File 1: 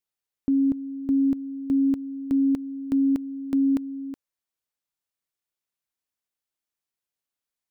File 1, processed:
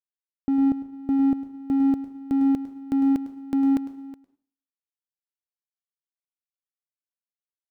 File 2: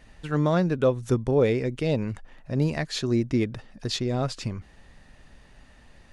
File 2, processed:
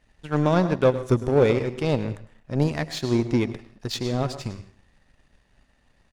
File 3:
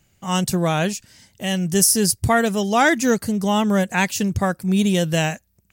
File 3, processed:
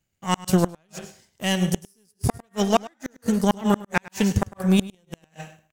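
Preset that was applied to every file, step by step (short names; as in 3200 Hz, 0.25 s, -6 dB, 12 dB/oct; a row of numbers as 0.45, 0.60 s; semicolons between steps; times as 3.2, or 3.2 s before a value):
plate-style reverb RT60 0.6 s, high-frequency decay 0.9×, pre-delay 0.1 s, DRR 11.5 dB; flipped gate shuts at -9 dBFS, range -32 dB; echo 0.103 s -14 dB; power-law curve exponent 1.4; match loudness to -24 LUFS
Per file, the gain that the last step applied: +0.5, +4.5, +4.5 dB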